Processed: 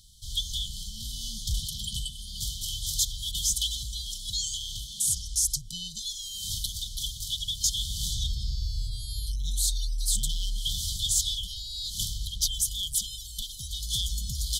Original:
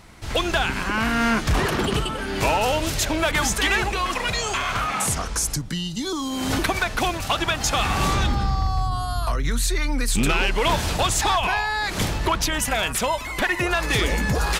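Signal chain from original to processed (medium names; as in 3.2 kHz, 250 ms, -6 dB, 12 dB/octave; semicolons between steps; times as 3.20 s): FFT band-reject 230–3000 Hz; amplifier tone stack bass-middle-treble 10-0-10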